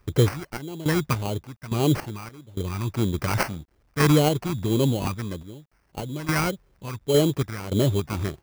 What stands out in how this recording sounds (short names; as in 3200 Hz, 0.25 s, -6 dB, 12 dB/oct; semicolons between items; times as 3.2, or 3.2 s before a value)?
random-step tremolo, depth 95%; a quantiser's noise floor 12-bit, dither none; phasing stages 2, 1.7 Hz, lowest notch 500–1600 Hz; aliases and images of a low sample rate 3600 Hz, jitter 0%